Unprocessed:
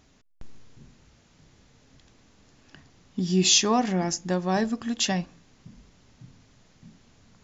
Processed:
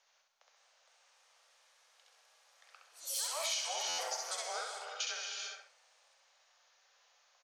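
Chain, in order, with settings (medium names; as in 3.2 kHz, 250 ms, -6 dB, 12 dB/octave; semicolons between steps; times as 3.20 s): ever faster or slower copies 566 ms, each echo +5 st, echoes 3, each echo -6 dB; steep high-pass 860 Hz 96 dB/octave; gated-style reverb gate 450 ms flat, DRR 4 dB; frequency shift -340 Hz; compression 8:1, threshold -27 dBFS, peak gain reduction 12.5 dB; feedback delay 66 ms, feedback 26%, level -3.5 dB; buffer glitch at 3.88 s, samples 512, times 8; trim -8 dB; SBC 128 kbps 48 kHz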